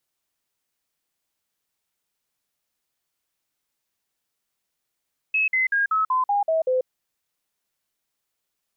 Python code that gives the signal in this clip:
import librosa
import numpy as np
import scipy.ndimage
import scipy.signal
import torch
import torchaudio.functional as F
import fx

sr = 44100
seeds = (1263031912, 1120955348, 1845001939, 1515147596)

y = fx.stepped_sweep(sr, from_hz=2580.0, direction='down', per_octave=3, tones=8, dwell_s=0.14, gap_s=0.05, level_db=-18.0)